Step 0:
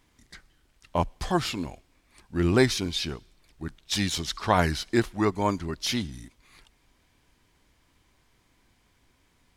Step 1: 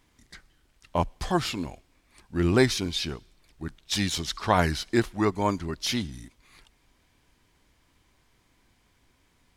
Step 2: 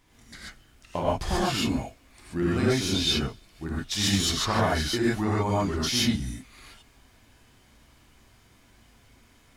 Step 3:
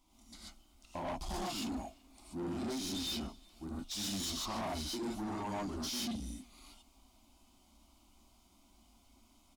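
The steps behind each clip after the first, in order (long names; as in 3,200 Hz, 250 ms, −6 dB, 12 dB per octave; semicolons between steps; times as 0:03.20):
no processing that can be heard
downward compressor 6 to 1, threshold −28 dBFS, peak gain reduction 13 dB; reverb whose tail is shaped and stops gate 160 ms rising, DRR −7 dB
phaser with its sweep stopped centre 460 Hz, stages 6; soft clipping −30 dBFS, distortion −9 dB; far-end echo of a speakerphone 380 ms, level −21 dB; level −5 dB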